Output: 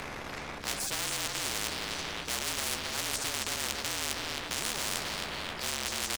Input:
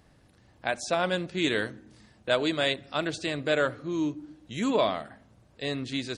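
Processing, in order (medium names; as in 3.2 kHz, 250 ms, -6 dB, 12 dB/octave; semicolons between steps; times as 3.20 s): rattle on loud lows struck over -38 dBFS, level -15 dBFS; tilt EQ -4 dB/octave; reverse; compression, threshold -30 dBFS, peak gain reduction 13.5 dB; reverse; formant shift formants +4 st; frequency shift -47 Hz; doubling 14 ms -7 dB; power-law waveshaper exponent 0.7; feedback delay 266 ms, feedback 43%, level -10.5 dB; spectrum-flattening compressor 10:1; trim +3.5 dB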